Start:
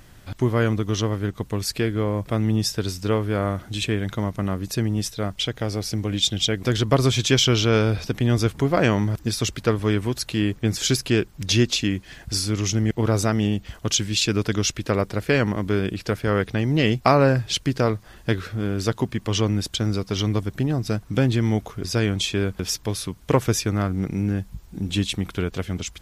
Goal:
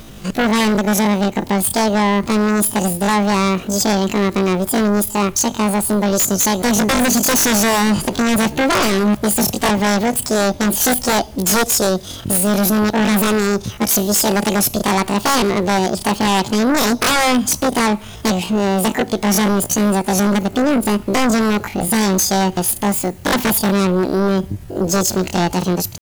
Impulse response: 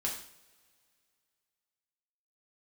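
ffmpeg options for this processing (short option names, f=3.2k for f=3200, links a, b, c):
-filter_complex "[0:a]asetrate=85689,aresample=44100,atempo=0.514651,asplit=2[a][b];[1:a]atrim=start_sample=2205,highshelf=f=12k:g=10[c];[b][c]afir=irnorm=-1:irlink=0,volume=-23.5dB[d];[a][d]amix=inputs=2:normalize=0,aeval=exprs='0.75*sin(PI/2*6.31*val(0)/0.75)':c=same,volume=-8.5dB"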